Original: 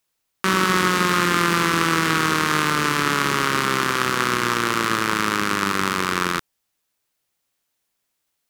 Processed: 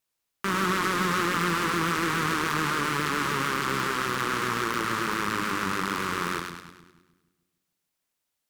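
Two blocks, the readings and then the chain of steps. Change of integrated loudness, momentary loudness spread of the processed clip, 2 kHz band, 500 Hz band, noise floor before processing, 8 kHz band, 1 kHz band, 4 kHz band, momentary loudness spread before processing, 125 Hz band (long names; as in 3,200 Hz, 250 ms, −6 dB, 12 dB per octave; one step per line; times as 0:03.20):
−6.5 dB, 4 LU, −6.5 dB, −6.5 dB, −76 dBFS, −8.0 dB, −6.0 dB, −8.0 dB, 4 LU, −6.0 dB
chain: echo with a time of its own for lows and highs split 330 Hz, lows 148 ms, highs 103 ms, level −7 dB
hard clipping −11 dBFS, distortion −12 dB
pitch vibrato 7 Hz 63 cents
level −6.5 dB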